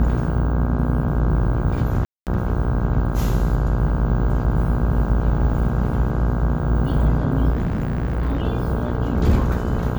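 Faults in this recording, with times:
mains buzz 60 Hz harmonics 27 −24 dBFS
0:02.05–0:02.27: drop-out 218 ms
0:07.52–0:08.42: clipping −18 dBFS

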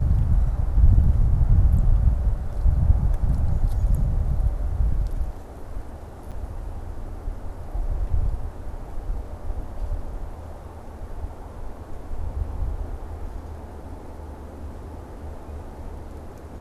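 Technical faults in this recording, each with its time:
0:06.31–0:06.32: drop-out 7.1 ms

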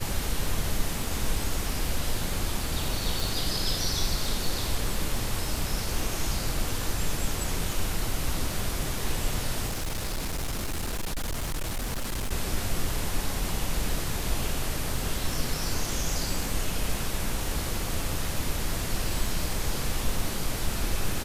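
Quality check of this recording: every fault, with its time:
surface crackle 33 per second −32 dBFS
0:03.20: click
0:09.67–0:12.32: clipping −26.5 dBFS

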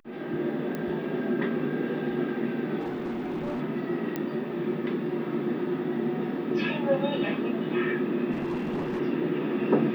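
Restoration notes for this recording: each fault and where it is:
0:00.75: click −20 dBFS
0:02.79–0:03.61: clipping −28 dBFS
0:04.16: click −17 dBFS
0:08.31–0:09.01: clipping −27 dBFS

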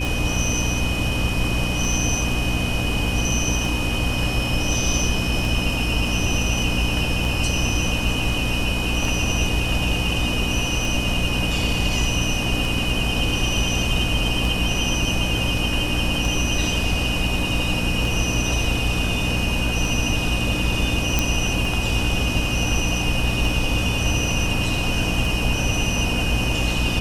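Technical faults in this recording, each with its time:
mains hum 60 Hz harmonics 5 −26 dBFS
scratch tick 33 1/3 rpm
whistle 2,500 Hz −28 dBFS
0:21.19: click

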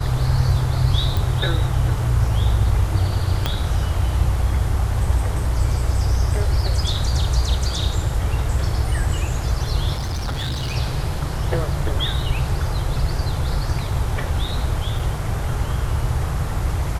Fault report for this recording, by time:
0:01.17: click
0:03.46: click −6 dBFS
0:09.93–0:10.76: clipping −21 dBFS
0:14.99: drop-out 4.4 ms

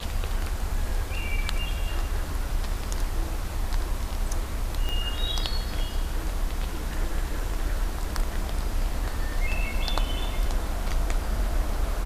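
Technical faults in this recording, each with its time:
0:04.89: click −16 dBFS

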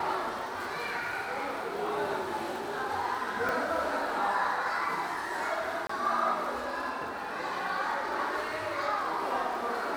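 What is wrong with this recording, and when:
surface crackle 56 per second −40 dBFS
0:03.49: click −18 dBFS
0:05.87–0:05.89: drop-out 24 ms

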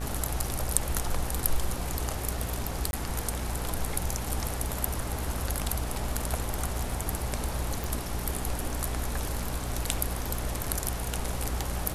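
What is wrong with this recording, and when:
mains buzz 60 Hz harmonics 30 −35 dBFS
surface crackle 15 per second −38 dBFS
0:02.91–0:02.93: drop-out 21 ms
0:07.84: click

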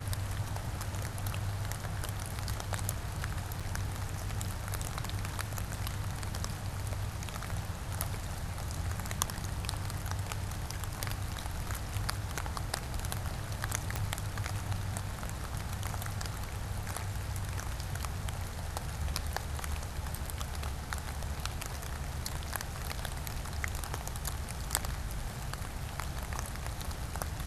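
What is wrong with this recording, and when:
0:03.60–0:03.61: drop-out 6.1 ms
0:13.96: click −18 dBFS

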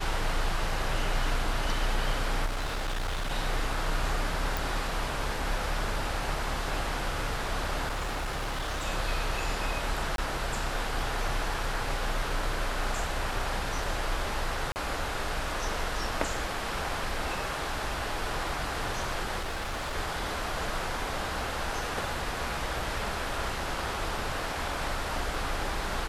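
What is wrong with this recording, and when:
0:02.45–0:03.32: clipping −28 dBFS
0:04.57: click
0:07.87–0:08.86: clipping −28.5 dBFS
0:10.16–0:10.18: drop-out 22 ms
0:14.72–0:14.76: drop-out 39 ms
0:19.40–0:19.95: clipping −30 dBFS

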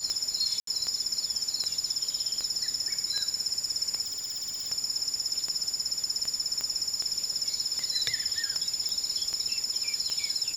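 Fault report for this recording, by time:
scratch tick 78 rpm −19 dBFS
whistle 7,000 Hz −36 dBFS
0:00.60–0:00.67: drop-out 73 ms
0:04.03–0:04.69: clipping −31 dBFS
0:06.61: click −17 dBFS
0:08.89: click

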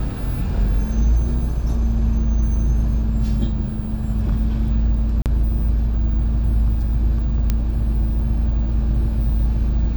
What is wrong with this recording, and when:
0:05.22–0:05.26: drop-out 38 ms
0:07.50: click −6 dBFS

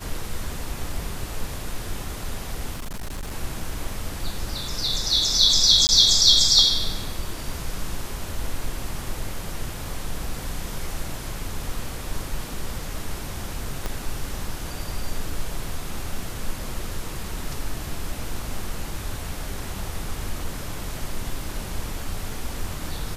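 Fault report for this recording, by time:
0:02.72–0:03.33: clipping −27.5 dBFS
0:05.87–0:05.89: drop-out 19 ms
0:13.86: click −13 dBFS

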